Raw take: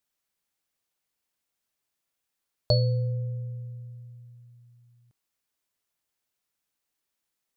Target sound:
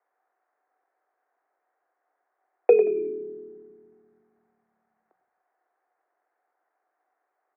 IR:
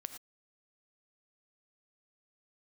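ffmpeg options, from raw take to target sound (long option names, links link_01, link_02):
-filter_complex "[0:a]equalizer=frequency=1100:width_type=o:width=0.21:gain=14.5,highpass=frequency=340:width_type=q:width=0.5412,highpass=frequency=340:width_type=q:width=1.307,lowpass=frequency=3100:width_type=q:width=0.5176,lowpass=frequency=3100:width_type=q:width=0.7071,lowpass=frequency=3100:width_type=q:width=1.932,afreqshift=300,acontrast=75,asplit=5[link_01][link_02][link_03][link_04][link_05];[link_02]adelay=87,afreqshift=-79,volume=-10dB[link_06];[link_03]adelay=174,afreqshift=-158,volume=-17.5dB[link_07];[link_04]adelay=261,afreqshift=-237,volume=-25.1dB[link_08];[link_05]adelay=348,afreqshift=-316,volume=-32.6dB[link_09];[link_01][link_06][link_07][link_08][link_09]amix=inputs=5:normalize=0,asplit=2[link_10][link_11];[1:a]atrim=start_sample=2205[link_12];[link_11][link_12]afir=irnorm=-1:irlink=0,volume=-0.5dB[link_13];[link_10][link_13]amix=inputs=2:normalize=0,asetrate=23361,aresample=44100,atempo=1.88775"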